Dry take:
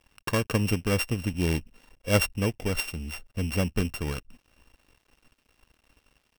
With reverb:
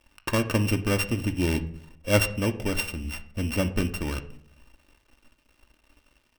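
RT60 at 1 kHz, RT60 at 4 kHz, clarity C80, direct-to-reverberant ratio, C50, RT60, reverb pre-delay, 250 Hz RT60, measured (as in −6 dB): 0.55 s, 0.40 s, 18.5 dB, 6.0 dB, 15.0 dB, 0.65 s, 3 ms, 0.85 s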